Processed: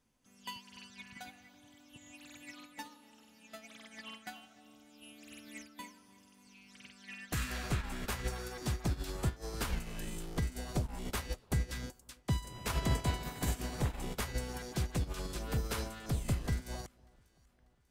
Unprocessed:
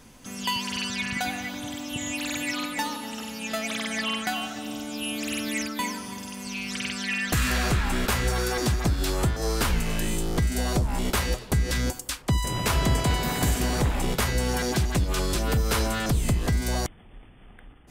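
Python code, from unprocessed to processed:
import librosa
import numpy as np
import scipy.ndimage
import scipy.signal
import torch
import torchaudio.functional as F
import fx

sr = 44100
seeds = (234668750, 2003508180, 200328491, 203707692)

y = fx.echo_alternate(x, sr, ms=296, hz=1100.0, feedback_pct=69, wet_db=-13.0)
y = fx.upward_expand(y, sr, threshold_db=-32.0, expansion=2.5)
y = F.gain(torch.from_numpy(y), -6.5).numpy()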